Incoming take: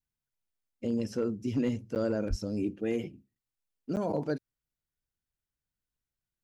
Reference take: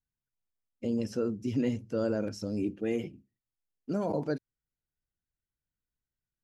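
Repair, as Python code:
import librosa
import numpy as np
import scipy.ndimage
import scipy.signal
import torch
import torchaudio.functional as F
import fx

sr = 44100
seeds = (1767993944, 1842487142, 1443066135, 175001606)

y = fx.fix_declip(x, sr, threshold_db=-21.5)
y = fx.highpass(y, sr, hz=140.0, slope=24, at=(2.29, 2.41), fade=0.02)
y = fx.fix_interpolate(y, sr, at_s=(1.95, 3.35, 3.96), length_ms=9.1)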